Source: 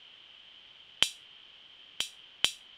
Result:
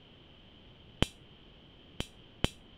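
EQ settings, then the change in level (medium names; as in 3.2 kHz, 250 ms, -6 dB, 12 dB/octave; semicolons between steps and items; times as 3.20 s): dynamic bell 4.9 kHz, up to -5 dB, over -45 dBFS, Q 1.2; tilt shelf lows +9.5 dB, about 860 Hz; bass shelf 450 Hz +10.5 dB; 0.0 dB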